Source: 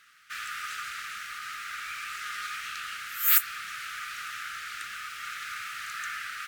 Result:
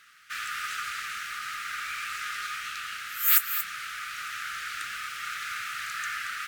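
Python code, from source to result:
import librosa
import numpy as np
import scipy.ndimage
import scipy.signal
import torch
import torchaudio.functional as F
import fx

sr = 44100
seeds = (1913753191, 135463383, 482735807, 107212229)

p1 = fx.rider(x, sr, range_db=4, speed_s=2.0)
p2 = p1 + fx.echo_single(p1, sr, ms=228, db=-10.0, dry=0)
y = p2 * 10.0 ** (-1.5 / 20.0)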